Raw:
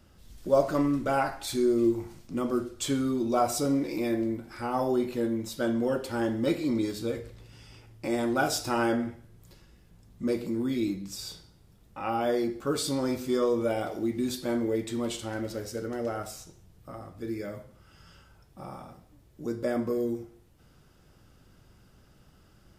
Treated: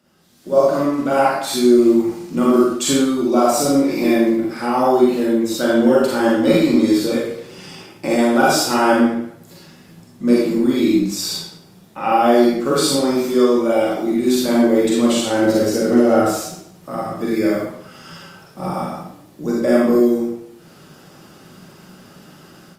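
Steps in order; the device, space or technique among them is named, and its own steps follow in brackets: 15.42–16.38 low shelf 420 Hz +7 dB; far-field microphone of a smart speaker (reverb RT60 0.65 s, pre-delay 36 ms, DRR -4.5 dB; HPF 150 Hz 24 dB/oct; AGC gain up to 14 dB; gain -1 dB; Opus 48 kbps 48000 Hz)

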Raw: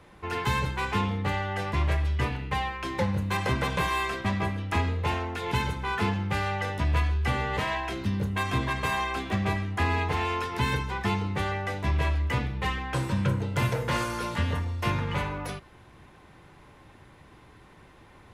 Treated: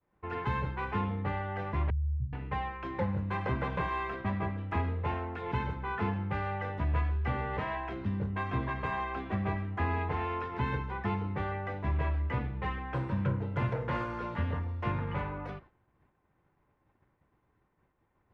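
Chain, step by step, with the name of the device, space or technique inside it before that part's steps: hearing-loss simulation (LPF 1800 Hz 12 dB/oct; expander -42 dBFS); 1.9–2.33 inverse Chebyshev low-pass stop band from 630 Hz, stop band 70 dB; gain -4.5 dB

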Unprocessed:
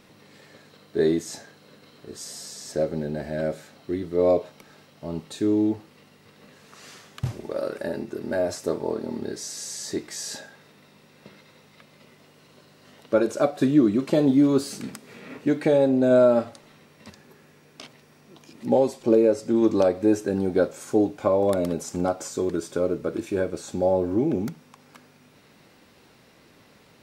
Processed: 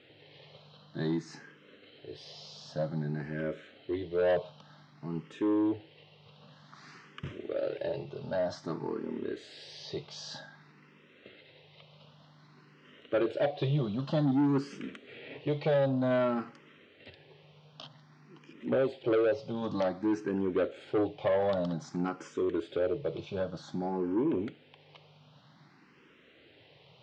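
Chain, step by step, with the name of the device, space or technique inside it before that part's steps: barber-pole phaser into a guitar amplifier (endless phaser +0.53 Hz; soft clip -20 dBFS, distortion -12 dB; speaker cabinet 92–4500 Hz, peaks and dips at 140 Hz +8 dB, 220 Hz -5 dB, 3100 Hz +7 dB); gain -2 dB

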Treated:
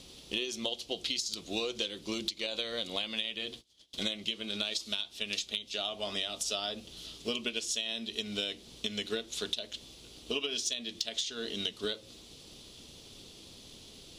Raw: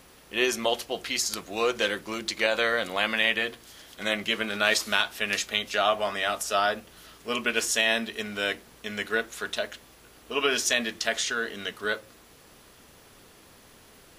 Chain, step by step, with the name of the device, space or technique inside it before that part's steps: LPF 11000 Hz 12 dB/oct; 3.46–3.94 gate -45 dBFS, range -28 dB; EQ curve 330 Hz 0 dB, 1700 Hz -15 dB, 3500 Hz +8 dB, 12000 Hz -4 dB; drum-bus smash (transient shaper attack +5 dB, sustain 0 dB; compressor 16:1, threshold -31 dBFS, peak gain reduction 19 dB; soft clip -18.5 dBFS, distortion -23 dB); gain +1.5 dB

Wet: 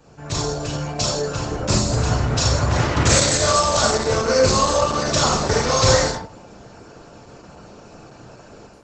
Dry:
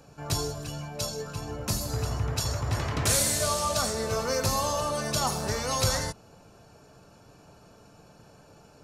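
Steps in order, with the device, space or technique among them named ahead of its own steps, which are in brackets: 4.16–5.43 bell 840 Hz -5.5 dB 0.51 oct; speakerphone in a meeting room (reverb RT60 0.40 s, pre-delay 32 ms, DRR -2 dB; AGC gain up to 7.5 dB; gain +1.5 dB; Opus 12 kbps 48000 Hz)

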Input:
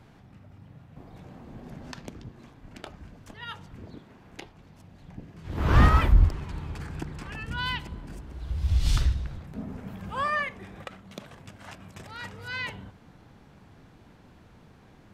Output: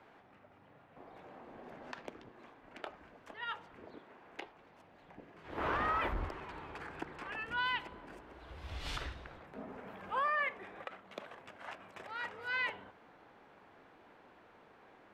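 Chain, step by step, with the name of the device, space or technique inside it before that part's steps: DJ mixer with the lows and highs turned down (three-band isolator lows -22 dB, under 340 Hz, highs -15 dB, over 3000 Hz; limiter -25.5 dBFS, peak gain reduction 11 dB)

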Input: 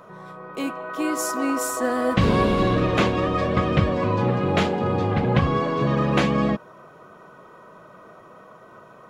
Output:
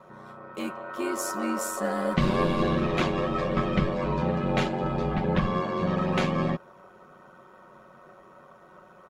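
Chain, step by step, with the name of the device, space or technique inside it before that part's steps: ring-modulated robot voice (ring modulator 46 Hz; comb 5.4 ms, depth 61%); gain -3.5 dB

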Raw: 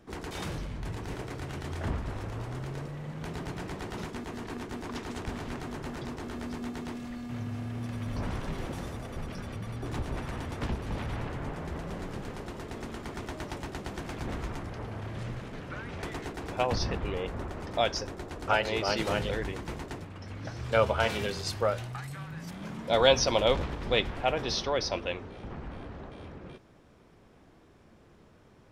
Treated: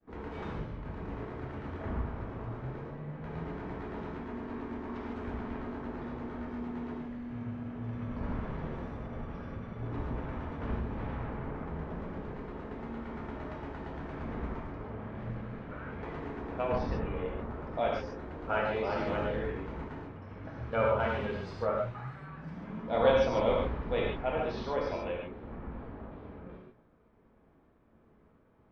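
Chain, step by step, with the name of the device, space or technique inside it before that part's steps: hearing-loss simulation (LPF 1700 Hz 12 dB/oct; expander -53 dBFS); non-linear reverb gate 0.17 s flat, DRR -3 dB; gain -6 dB

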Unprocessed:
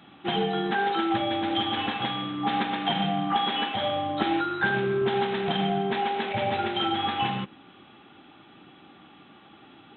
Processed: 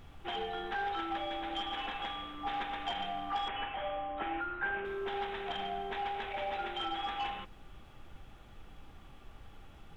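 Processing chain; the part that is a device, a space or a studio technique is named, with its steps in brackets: aircraft cabin announcement (BPF 480–3600 Hz; soft clip -18.5 dBFS, distortion -23 dB; brown noise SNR 12 dB); 3.48–4.85 steep low-pass 3000 Hz 48 dB/oct; gain -7.5 dB

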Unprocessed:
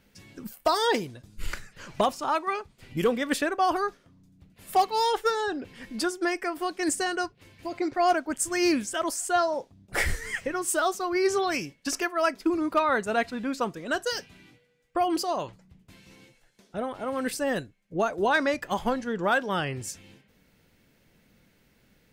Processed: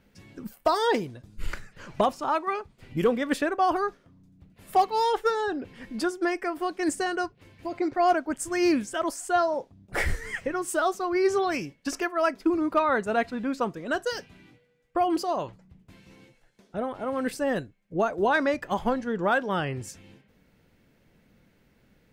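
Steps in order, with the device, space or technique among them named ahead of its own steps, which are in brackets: behind a face mask (high shelf 2500 Hz -8 dB); gain +1.5 dB

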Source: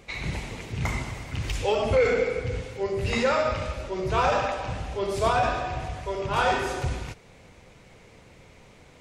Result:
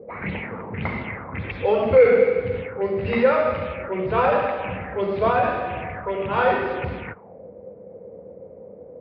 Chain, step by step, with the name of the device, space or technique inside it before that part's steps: 1.24–1.74 notch 2900 Hz, Q 5.9; envelope filter bass rig (envelope low-pass 460–4600 Hz up, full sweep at -24.5 dBFS; speaker cabinet 81–2300 Hz, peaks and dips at 130 Hz -7 dB, 200 Hz +8 dB, 490 Hz +7 dB); gain +2 dB

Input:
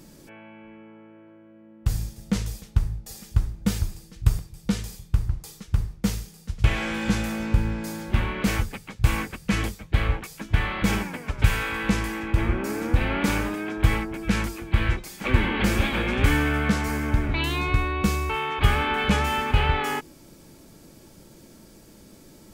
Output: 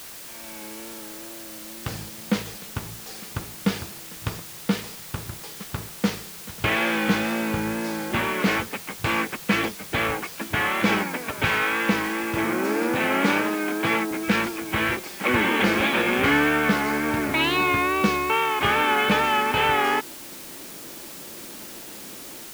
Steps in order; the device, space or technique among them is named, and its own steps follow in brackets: dictaphone (BPF 260–3800 Hz; AGC gain up to 13.5 dB; wow and flutter; white noise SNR 15 dB); 12.45–14.11 HPF 120 Hz 24 dB/oct; gain -5.5 dB

